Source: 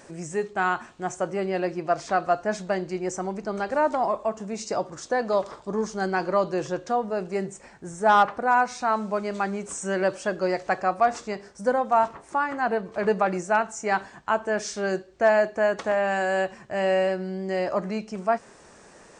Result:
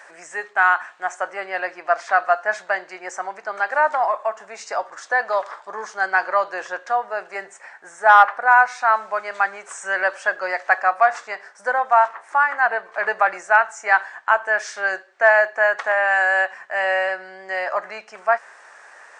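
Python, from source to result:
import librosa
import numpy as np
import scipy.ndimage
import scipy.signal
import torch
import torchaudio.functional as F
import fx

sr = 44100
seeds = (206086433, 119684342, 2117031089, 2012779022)

y = fx.highpass_res(x, sr, hz=730.0, q=1.7)
y = fx.peak_eq(y, sr, hz=1700.0, db=14.0, octaves=1.1)
y = F.gain(torch.from_numpy(y), -2.5).numpy()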